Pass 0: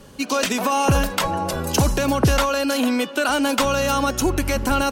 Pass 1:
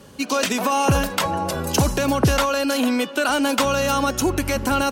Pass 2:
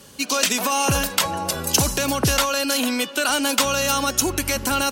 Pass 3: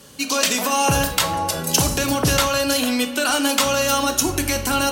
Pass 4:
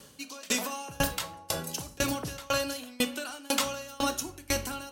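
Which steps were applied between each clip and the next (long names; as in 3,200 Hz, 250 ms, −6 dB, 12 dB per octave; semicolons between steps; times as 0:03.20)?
high-pass filter 58 Hz
high-shelf EQ 2,300 Hz +11.5 dB; level −4 dB
rectangular room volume 170 cubic metres, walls mixed, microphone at 0.47 metres
tremolo with a ramp in dB decaying 2 Hz, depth 27 dB; level −4 dB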